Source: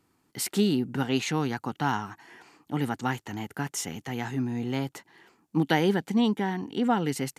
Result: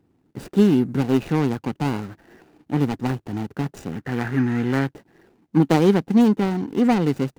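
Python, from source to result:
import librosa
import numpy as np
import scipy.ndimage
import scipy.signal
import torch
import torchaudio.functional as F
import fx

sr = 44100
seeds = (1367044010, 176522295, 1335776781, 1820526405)

y = scipy.ndimage.median_filter(x, 41, mode='constant')
y = fx.peak_eq(y, sr, hz=1700.0, db=12.0, octaves=0.98, at=(3.92, 4.91))
y = y * 10.0 ** (8.5 / 20.0)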